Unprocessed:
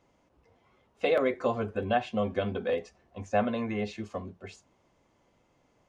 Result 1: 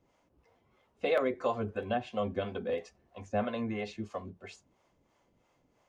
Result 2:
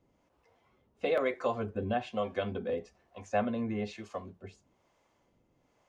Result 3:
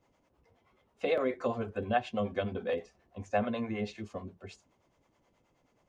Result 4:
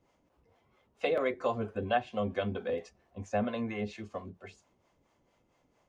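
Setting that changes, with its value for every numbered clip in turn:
two-band tremolo in antiphase, speed: 3, 1.1, 9.4, 4.4 Hertz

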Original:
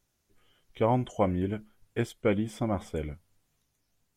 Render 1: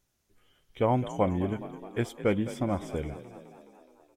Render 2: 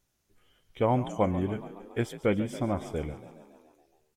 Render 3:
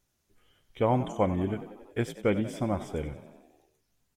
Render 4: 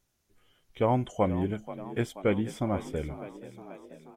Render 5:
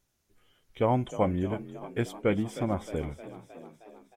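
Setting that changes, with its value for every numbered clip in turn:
echo with shifted repeats, delay time: 210, 140, 93, 482, 311 milliseconds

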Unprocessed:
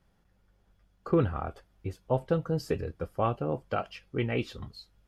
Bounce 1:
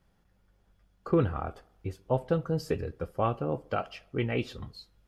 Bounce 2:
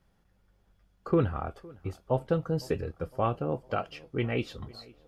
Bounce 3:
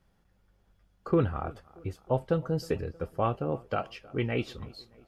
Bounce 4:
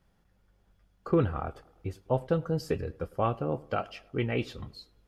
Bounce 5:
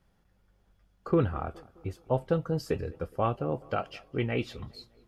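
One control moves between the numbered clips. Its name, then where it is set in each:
tape delay, delay time: 67, 507, 313, 102, 207 milliseconds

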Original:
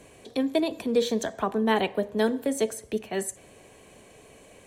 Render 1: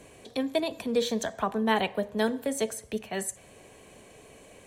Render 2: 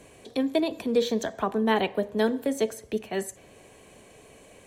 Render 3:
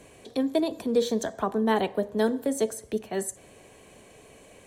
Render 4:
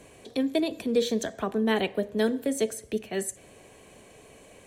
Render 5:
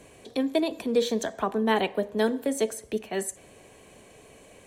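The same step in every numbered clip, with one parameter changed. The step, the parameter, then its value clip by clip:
dynamic equaliser, frequency: 340, 9,000, 2,500, 940, 110 Hertz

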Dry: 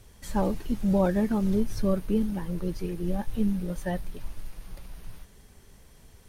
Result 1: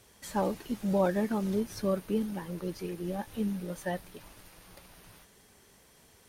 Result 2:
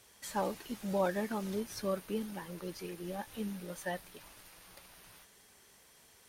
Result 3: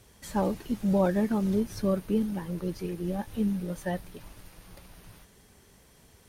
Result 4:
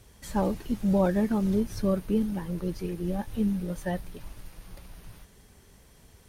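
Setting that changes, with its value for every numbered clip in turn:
high-pass filter, corner frequency: 330, 900, 120, 42 Hertz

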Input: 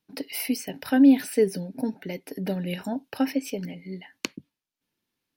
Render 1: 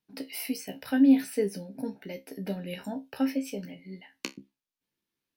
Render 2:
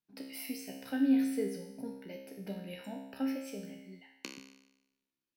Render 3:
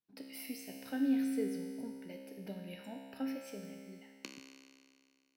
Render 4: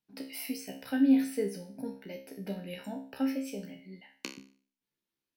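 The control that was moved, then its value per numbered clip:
tuned comb filter, decay: 0.18, 0.94, 2.2, 0.44 seconds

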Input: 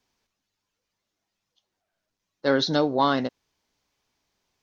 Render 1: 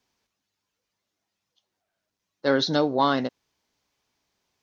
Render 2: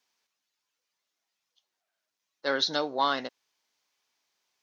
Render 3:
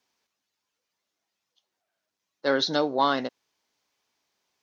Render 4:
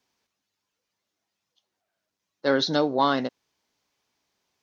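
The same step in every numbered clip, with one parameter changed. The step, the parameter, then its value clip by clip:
high-pass filter, corner frequency: 53, 1,100, 380, 150 Hertz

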